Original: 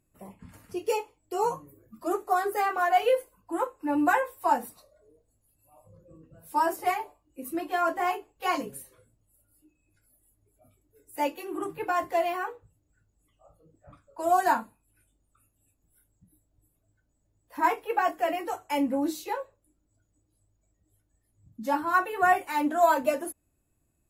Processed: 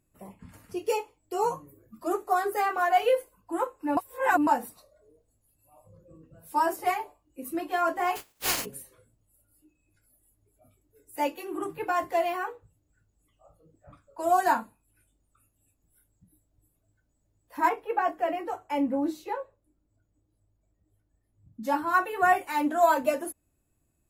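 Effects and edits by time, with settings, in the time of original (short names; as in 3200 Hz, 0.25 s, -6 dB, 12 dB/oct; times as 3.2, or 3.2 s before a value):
3.97–4.47 reverse
8.15–8.64 spectral contrast lowered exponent 0.2
17.69–21.63 high shelf 3000 Hz -12 dB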